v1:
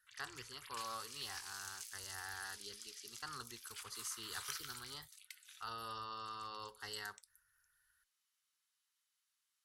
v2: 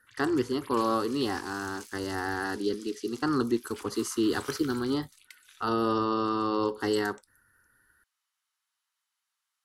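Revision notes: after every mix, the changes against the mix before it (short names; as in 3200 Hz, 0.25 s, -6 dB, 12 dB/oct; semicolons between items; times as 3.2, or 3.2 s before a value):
speech +7.0 dB; master: remove passive tone stack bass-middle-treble 10-0-10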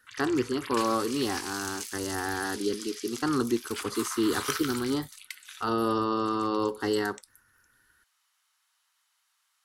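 background +10.5 dB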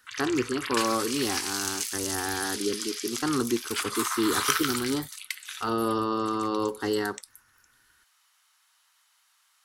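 background +7.0 dB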